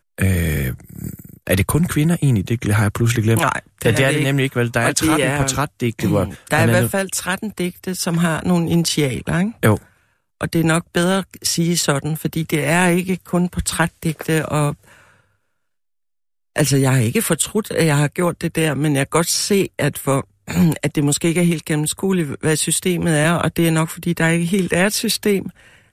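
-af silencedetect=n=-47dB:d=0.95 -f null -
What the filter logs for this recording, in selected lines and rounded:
silence_start: 15.20
silence_end: 16.56 | silence_duration: 1.35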